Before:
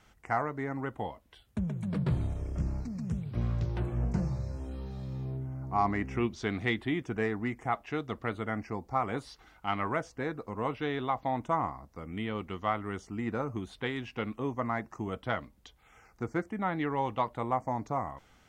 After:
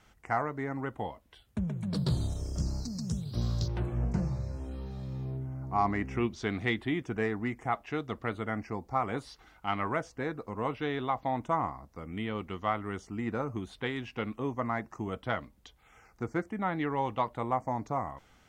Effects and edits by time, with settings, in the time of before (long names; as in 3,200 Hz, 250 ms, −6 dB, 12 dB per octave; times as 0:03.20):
0:01.93–0:03.68: high shelf with overshoot 3,200 Hz +11.5 dB, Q 3